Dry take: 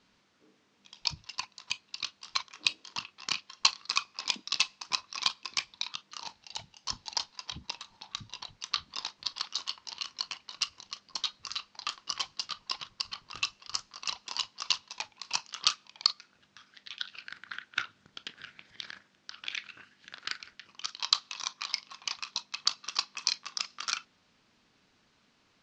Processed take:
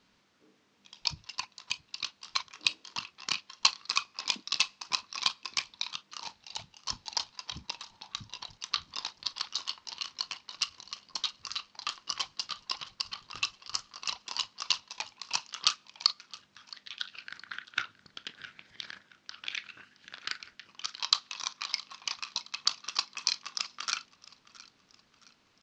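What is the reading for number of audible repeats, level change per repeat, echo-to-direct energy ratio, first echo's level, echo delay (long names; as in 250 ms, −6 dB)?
2, −7.5 dB, −19.5 dB, −20.5 dB, 668 ms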